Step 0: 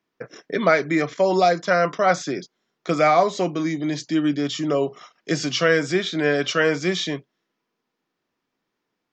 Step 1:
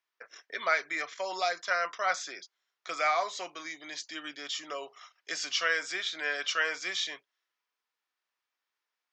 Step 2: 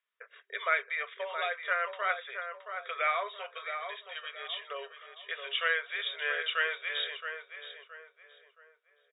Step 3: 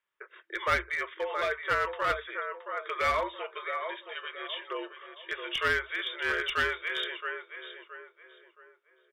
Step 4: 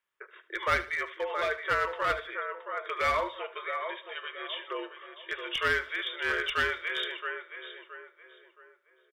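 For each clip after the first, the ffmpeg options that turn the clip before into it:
-af "highpass=1.1k,volume=-5dB"
-filter_complex "[0:a]afftfilt=real='re*between(b*sr/4096,390,3800)':imag='im*between(b*sr/4096,390,3800)':win_size=4096:overlap=0.75,equalizer=f=800:t=o:w=0.4:g=-11.5,asplit=2[a][b];[b]adelay=671,lowpass=f=1.8k:p=1,volume=-6.5dB,asplit=2[c][d];[d]adelay=671,lowpass=f=1.8k:p=1,volume=0.39,asplit=2[e][f];[f]adelay=671,lowpass=f=1.8k:p=1,volume=0.39,asplit=2[g][h];[h]adelay=671,lowpass=f=1.8k:p=1,volume=0.39,asplit=2[i][j];[j]adelay=671,lowpass=f=1.8k:p=1,volume=0.39[k];[c][e][g][i][k]amix=inputs=5:normalize=0[l];[a][l]amix=inputs=2:normalize=0"
-af "highshelf=f=3k:g=-9,aeval=exprs='clip(val(0),-1,0.0316)':c=same,afreqshift=-62,volume=5dB"
-af "aecho=1:1:75|150|225:0.168|0.0537|0.0172"

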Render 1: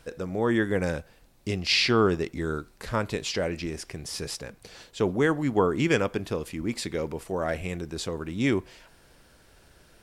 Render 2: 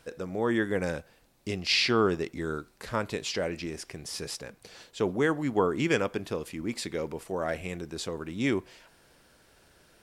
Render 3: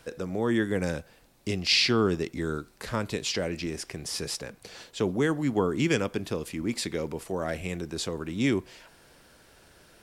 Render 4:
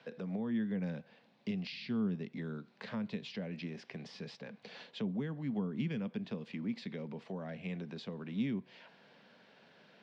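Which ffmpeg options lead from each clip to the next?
-af "lowshelf=f=90:g=-9.5,volume=-2dB"
-filter_complex "[0:a]acrossover=split=320|3000[a][b][c];[b]acompressor=threshold=-43dB:ratio=1.5[d];[a][d][c]amix=inputs=3:normalize=0,volume=4dB"
-filter_complex "[0:a]acrossover=split=230[a][b];[b]acompressor=threshold=-38dB:ratio=10[c];[a][c]amix=inputs=2:normalize=0,highpass=f=160:w=0.5412,highpass=f=160:w=1.3066,equalizer=f=210:t=q:w=4:g=6,equalizer=f=330:t=q:w=4:g=-10,equalizer=f=1.3k:t=q:w=4:g=-5,lowpass=f=4k:w=0.5412,lowpass=f=4k:w=1.3066,volume=-3dB"

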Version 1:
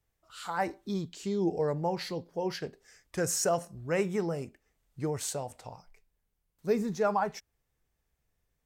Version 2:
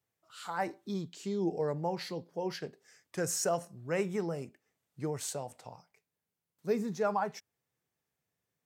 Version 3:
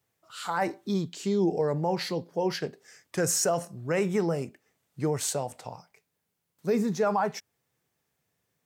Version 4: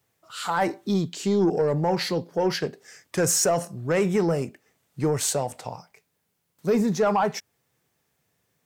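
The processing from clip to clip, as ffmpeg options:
-af "highpass=f=110:w=0.5412,highpass=f=110:w=1.3066,volume=-3dB"
-af "alimiter=level_in=1dB:limit=-24dB:level=0:latency=1:release=23,volume=-1dB,volume=8dB"
-af "asoftclip=type=tanh:threshold=-19dB,volume=5.5dB"

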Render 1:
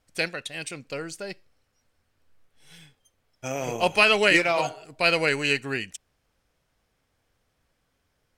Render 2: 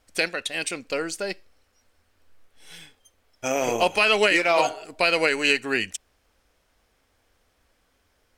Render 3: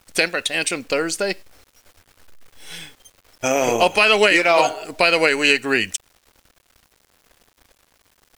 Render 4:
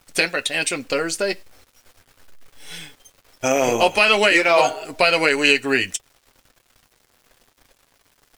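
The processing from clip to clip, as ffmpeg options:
-af "equalizer=f=140:w=2.7:g=-15,alimiter=limit=-14dB:level=0:latency=1:release=310,volume=6.5dB"
-filter_complex "[0:a]asplit=2[a][b];[b]acompressor=threshold=-30dB:ratio=4,volume=1dB[c];[a][c]amix=inputs=2:normalize=0,acrusher=bits=8:mix=0:aa=0.000001,volume=2.5dB"
-af "flanger=delay=6.8:depth=1.5:regen=-43:speed=0.36:shape=triangular,volume=3.5dB"

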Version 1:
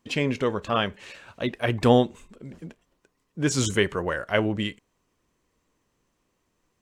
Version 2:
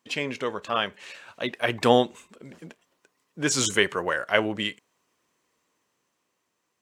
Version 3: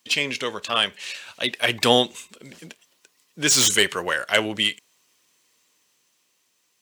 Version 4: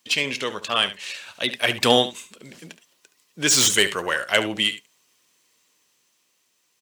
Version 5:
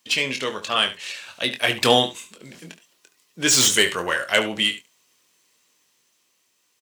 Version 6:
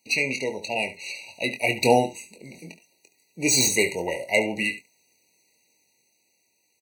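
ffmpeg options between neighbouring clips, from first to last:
-af "lowshelf=f=380:g=-11,dynaudnorm=f=250:g=11:m=5dB,highpass=110"
-filter_complex "[0:a]equalizer=f=7.2k:w=1.5:g=-2,acrossover=split=660|2600[a][b][c];[c]aeval=exprs='0.224*sin(PI/2*3.16*val(0)/0.224)':c=same[d];[a][b][d]amix=inputs=3:normalize=0"
-af "aecho=1:1:71:0.211"
-filter_complex "[0:a]asplit=2[a][b];[b]adelay=23,volume=-7.5dB[c];[a][c]amix=inputs=2:normalize=0"
-af "afftfilt=real='re*eq(mod(floor(b*sr/1024/960),2),0)':imag='im*eq(mod(floor(b*sr/1024/960),2),0)':win_size=1024:overlap=0.75"

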